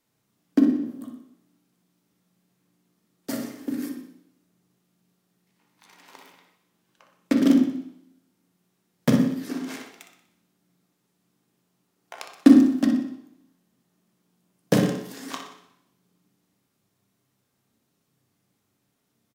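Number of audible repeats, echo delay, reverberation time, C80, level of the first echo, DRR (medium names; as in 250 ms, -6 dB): 1, 61 ms, 0.70 s, 8.5 dB, -8.5 dB, 1.5 dB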